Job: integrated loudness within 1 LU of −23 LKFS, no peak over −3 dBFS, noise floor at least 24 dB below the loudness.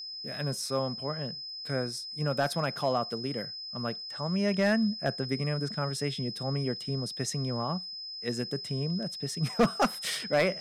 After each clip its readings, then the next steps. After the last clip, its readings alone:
share of clipped samples 0.3%; peaks flattened at −18.0 dBFS; interfering tone 5,100 Hz; level of the tone −38 dBFS; integrated loudness −31.0 LKFS; sample peak −18.0 dBFS; target loudness −23.0 LKFS
→ clipped peaks rebuilt −18 dBFS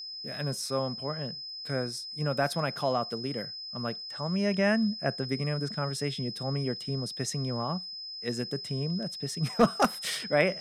share of clipped samples 0.0%; interfering tone 5,100 Hz; level of the tone −38 dBFS
→ notch filter 5,100 Hz, Q 30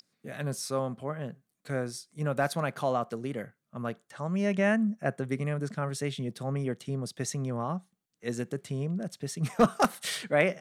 interfering tone none found; integrated loudness −31.5 LKFS; sample peak −9.0 dBFS; target loudness −23.0 LKFS
→ level +8.5 dB
brickwall limiter −3 dBFS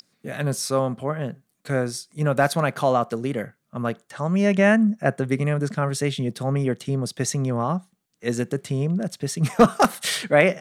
integrated loudness −23.0 LKFS; sample peak −3.0 dBFS; background noise floor −72 dBFS

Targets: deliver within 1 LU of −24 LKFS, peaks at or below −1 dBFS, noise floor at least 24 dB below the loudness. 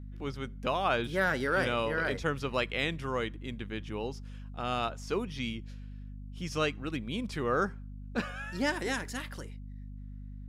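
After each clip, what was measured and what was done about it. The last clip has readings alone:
mains hum 50 Hz; hum harmonics up to 250 Hz; level of the hum −41 dBFS; integrated loudness −33.0 LKFS; sample peak −16.0 dBFS; target loudness −24.0 LKFS
→ hum removal 50 Hz, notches 5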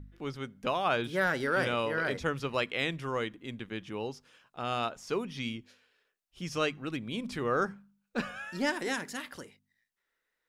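mains hum none found; integrated loudness −33.0 LKFS; sample peak −16.5 dBFS; target loudness −24.0 LKFS
→ level +9 dB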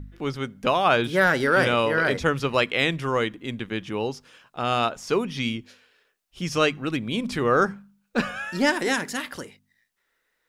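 integrated loudness −24.0 LKFS; sample peak −7.5 dBFS; background noise floor −74 dBFS

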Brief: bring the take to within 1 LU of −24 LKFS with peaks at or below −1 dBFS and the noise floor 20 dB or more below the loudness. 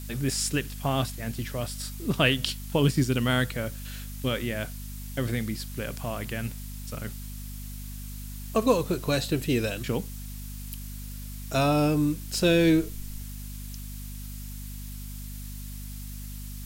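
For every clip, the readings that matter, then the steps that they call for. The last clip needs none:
mains hum 50 Hz; hum harmonics up to 250 Hz; level of the hum −35 dBFS; background noise floor −38 dBFS; target noise floor −48 dBFS; integrated loudness −27.5 LKFS; sample peak −7.0 dBFS; target loudness −24.0 LKFS
→ hum removal 50 Hz, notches 5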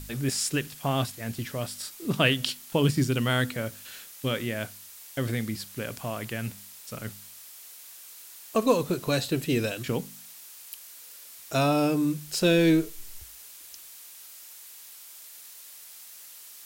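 mains hum none found; background noise floor −47 dBFS; target noise floor −48 dBFS
→ noise reduction from a noise print 6 dB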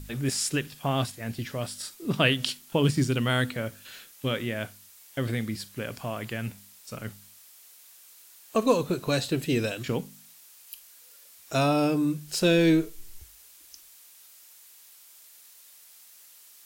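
background noise floor −53 dBFS; integrated loudness −27.5 LKFS; sample peak −7.0 dBFS; target loudness −24.0 LKFS
→ level +3.5 dB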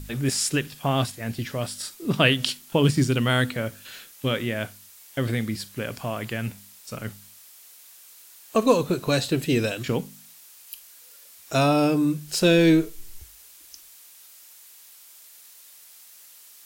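integrated loudness −24.0 LKFS; sample peak −3.5 dBFS; background noise floor −50 dBFS

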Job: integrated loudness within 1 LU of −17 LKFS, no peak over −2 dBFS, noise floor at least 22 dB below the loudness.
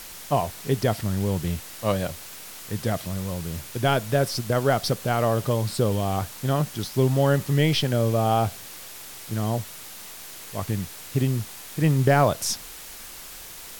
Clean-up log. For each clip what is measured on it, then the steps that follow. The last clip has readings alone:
background noise floor −41 dBFS; target noise floor −47 dBFS; integrated loudness −25.0 LKFS; sample peak −8.0 dBFS; target loudness −17.0 LKFS
→ broadband denoise 6 dB, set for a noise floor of −41 dBFS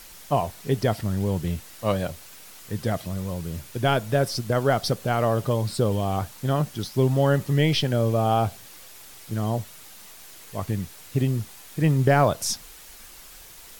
background noise floor −46 dBFS; target noise floor −47 dBFS
→ broadband denoise 6 dB, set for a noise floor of −46 dBFS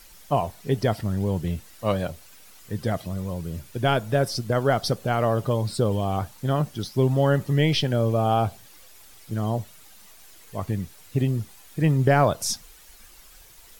background noise floor −50 dBFS; integrated loudness −25.0 LKFS; sample peak −8.0 dBFS; target loudness −17.0 LKFS
→ level +8 dB
brickwall limiter −2 dBFS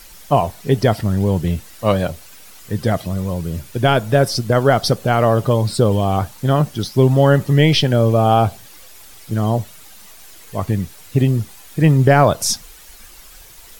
integrated loudness −17.0 LKFS; sample peak −2.0 dBFS; background noise floor −42 dBFS

